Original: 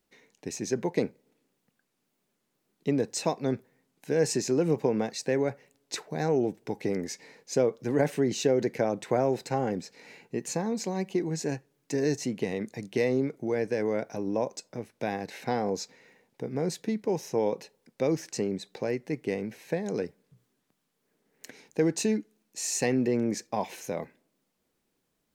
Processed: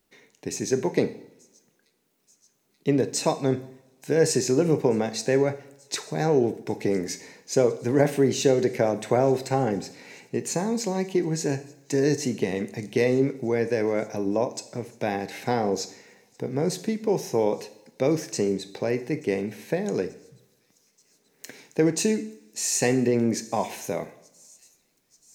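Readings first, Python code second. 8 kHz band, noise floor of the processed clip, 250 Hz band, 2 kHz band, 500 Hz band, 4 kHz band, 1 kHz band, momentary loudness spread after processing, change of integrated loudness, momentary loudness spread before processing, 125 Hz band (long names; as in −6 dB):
+5.5 dB, −68 dBFS, +4.0 dB, +4.5 dB, +4.5 dB, +5.0 dB, +4.5 dB, 11 LU, +4.5 dB, 11 LU, +5.0 dB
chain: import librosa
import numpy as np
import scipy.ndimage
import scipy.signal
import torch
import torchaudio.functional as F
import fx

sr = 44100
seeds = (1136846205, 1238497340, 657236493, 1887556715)

p1 = fx.high_shelf(x, sr, hz=10000.0, db=3.5)
p2 = p1 + fx.echo_wet_highpass(p1, sr, ms=883, feedback_pct=80, hz=4900.0, wet_db=-23, dry=0)
p3 = fx.rev_double_slope(p2, sr, seeds[0], early_s=0.64, late_s=2.1, knee_db=-24, drr_db=9.5)
y = p3 * librosa.db_to_amplitude(4.0)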